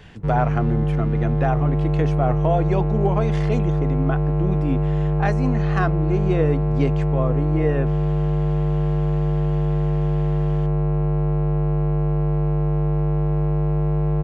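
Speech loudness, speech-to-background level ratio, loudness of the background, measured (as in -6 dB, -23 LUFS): -26.0 LUFS, -4.5 dB, -21.5 LUFS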